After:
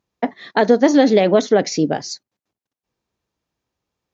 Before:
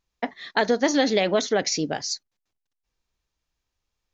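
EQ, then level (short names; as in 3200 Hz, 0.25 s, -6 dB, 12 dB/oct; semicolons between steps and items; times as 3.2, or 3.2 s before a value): HPF 130 Hz 12 dB/oct; tilt shelf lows +6 dB, about 1100 Hz; +4.5 dB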